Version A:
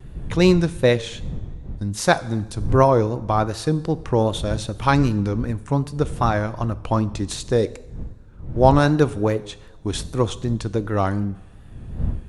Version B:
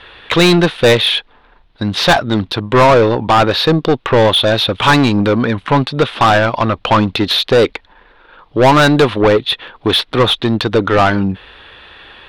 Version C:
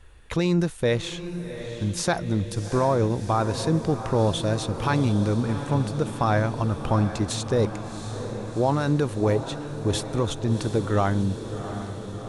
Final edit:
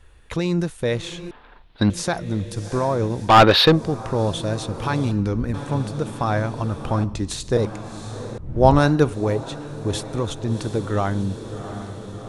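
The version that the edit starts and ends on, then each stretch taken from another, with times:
C
0:01.31–0:01.90: punch in from B
0:03.29–0:03.74: punch in from B, crossfade 0.16 s
0:05.11–0:05.54: punch in from A
0:07.04–0:07.57: punch in from A
0:08.38–0:09.13: punch in from A

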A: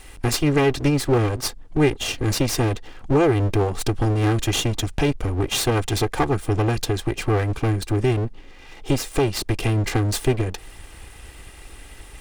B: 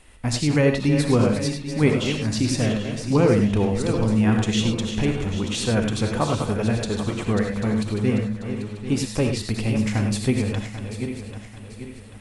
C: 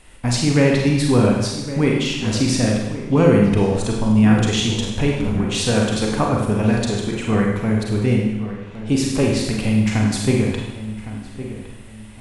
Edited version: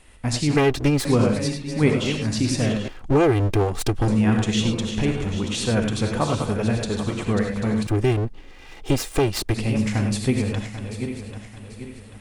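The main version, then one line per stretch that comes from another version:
B
0:00.57–0:01.05: punch in from A
0:02.88–0:04.08: punch in from A
0:07.87–0:09.54: punch in from A
not used: C

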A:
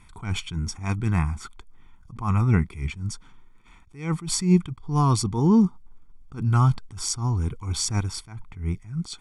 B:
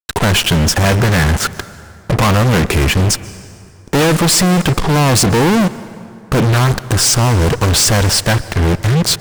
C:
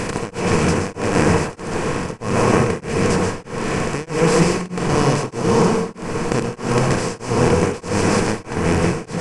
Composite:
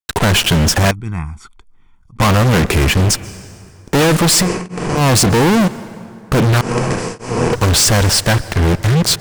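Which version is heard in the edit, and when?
B
0:00.91–0:02.20: punch in from A
0:04.45–0:04.99: punch in from C, crossfade 0.10 s
0:06.61–0:07.53: punch in from C

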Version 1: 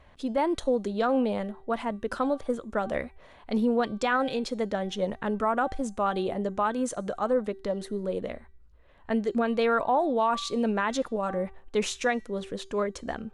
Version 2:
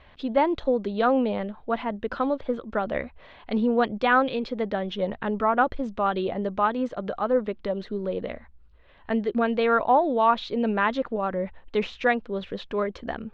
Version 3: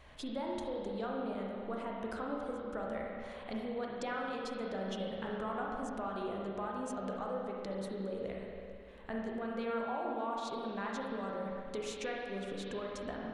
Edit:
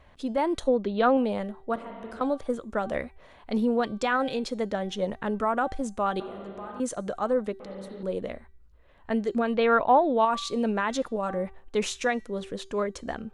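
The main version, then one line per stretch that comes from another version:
1
0:00.68–0:01.17: punch in from 2
0:01.76–0:02.21: punch in from 3
0:06.20–0:06.80: punch in from 3
0:07.60–0:08.03: punch in from 3
0:09.54–0:10.25: punch in from 2

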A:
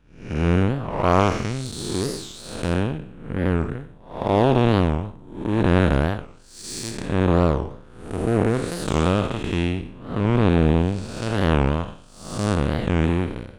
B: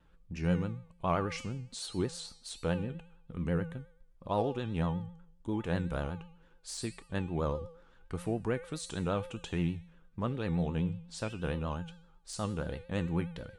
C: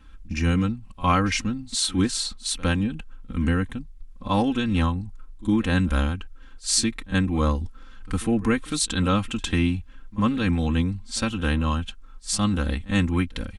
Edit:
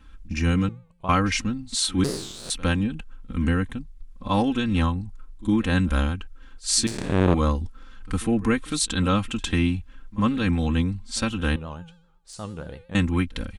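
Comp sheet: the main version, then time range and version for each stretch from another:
C
0:00.69–0:01.09: punch in from B
0:02.04–0:02.50: punch in from A
0:06.87–0:07.34: punch in from A
0:11.56–0:12.95: punch in from B

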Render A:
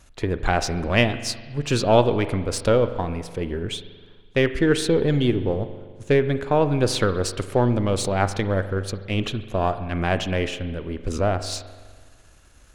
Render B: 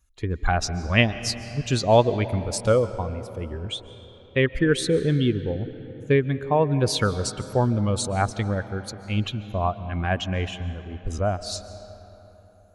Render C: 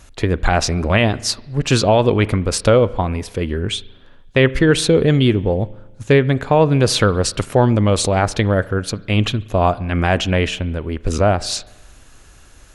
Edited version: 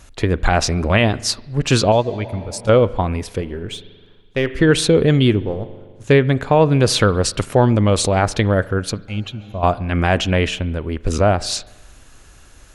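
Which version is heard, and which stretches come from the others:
C
0:01.92–0:02.69: punch in from B
0:03.41–0:04.59: punch in from A
0:05.40–0:06.04: punch in from A
0:09.08–0:09.63: punch in from B

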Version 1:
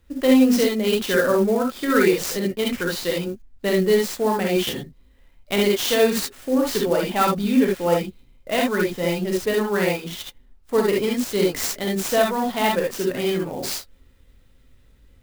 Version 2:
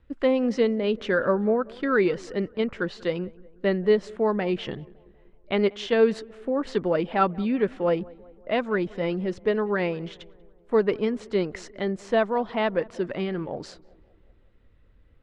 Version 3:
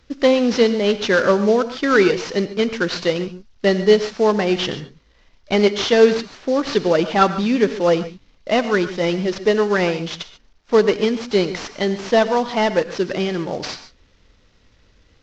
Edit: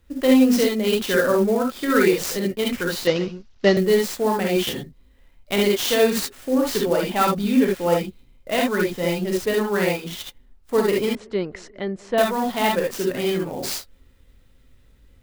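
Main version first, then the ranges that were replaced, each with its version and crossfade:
1
0:03.07–0:03.77: punch in from 3
0:11.15–0:12.18: punch in from 2

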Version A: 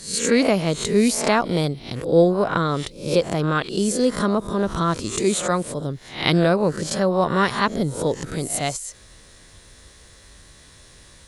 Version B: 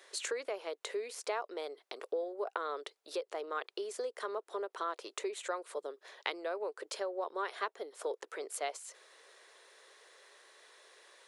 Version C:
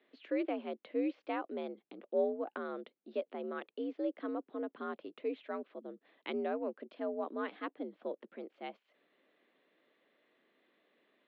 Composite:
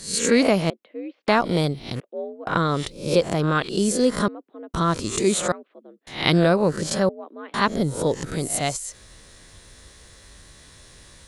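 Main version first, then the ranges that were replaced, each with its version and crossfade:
A
0:00.70–0:01.28: punch in from C
0:02.00–0:02.47: punch in from C
0:04.28–0:04.74: punch in from C
0:05.52–0:06.07: punch in from C
0:07.09–0:07.54: punch in from C
not used: B

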